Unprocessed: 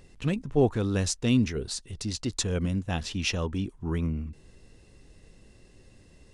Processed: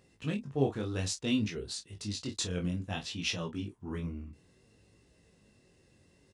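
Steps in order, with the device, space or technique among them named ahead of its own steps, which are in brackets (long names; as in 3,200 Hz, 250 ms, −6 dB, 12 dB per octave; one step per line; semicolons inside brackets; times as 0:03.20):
high-pass filter 83 Hz
dynamic equaliser 3,400 Hz, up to +5 dB, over −45 dBFS, Q 1.3
double-tracked vocal (double-tracking delay 29 ms −9.5 dB; chorus effect 0.59 Hz, delay 17.5 ms, depth 5.4 ms)
level −4 dB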